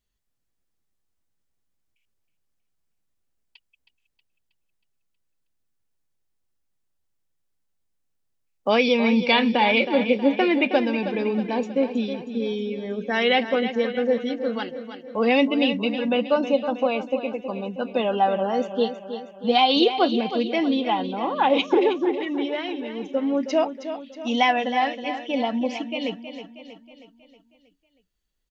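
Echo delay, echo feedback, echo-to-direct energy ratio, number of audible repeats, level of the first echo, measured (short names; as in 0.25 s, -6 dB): 0.318 s, 52%, -9.0 dB, 5, -10.5 dB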